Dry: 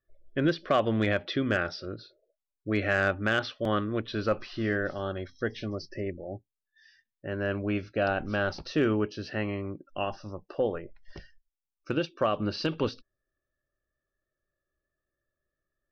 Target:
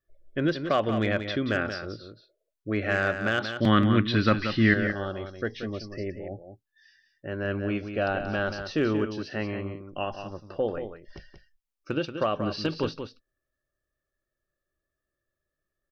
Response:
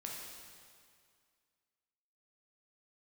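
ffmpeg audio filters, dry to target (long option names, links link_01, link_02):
-filter_complex "[0:a]asettb=1/sr,asplit=3[link_01][link_02][link_03];[link_01]atrim=end=1.784[link_04];[link_02]atrim=start=1.78:end=2.84,asetpts=PTS-STARTPTS,afade=type=in:duration=0.004:curve=qsin,afade=type=out:start_time=1.056:duration=0.004:curve=qsin,acrossover=split=2700[link_05][link_06];[link_06]acompressor=threshold=-45dB:ratio=4:attack=1:release=60[link_07];[link_05][link_07]amix=inputs=2:normalize=0[link_08];[link_03]atrim=start=2.836[link_09];[link_04][link_08]acrossfade=duration=0.004:curve1=hsin:curve2=qsin[link_10];[link_10][link_09]acrossfade=duration=0.004:curve1=qsin:curve2=hsin,asettb=1/sr,asplit=3[link_11][link_12][link_13];[link_11]atrim=end=3.584[link_14];[link_12]atrim=start=3.58:end=4.74,asetpts=PTS-STARTPTS,afade=type=in:duration=0.004:curve=qsin,afade=type=out:start_time=1.156:duration=0.004:curve=qsin,equalizer=frequency=125:width_type=o:width=1:gain=10,equalizer=frequency=250:width_type=o:width=1:gain=10,equalizer=frequency=500:width_type=o:width=1:gain=-4,equalizer=frequency=1000:width_type=o:width=1:gain=3,equalizer=frequency=2000:width_type=o:width=1:gain=11,equalizer=frequency=4000:width_type=o:width=1:gain=7[link_15];[link_13]atrim=start=4.736[link_16];[link_14][link_15]acrossfade=duration=0.004:curve1=hsin:curve2=qsin[link_17];[link_17][link_16]acrossfade=duration=0.004:curve1=qsin:curve2=hsin,aecho=1:1:181:0.376"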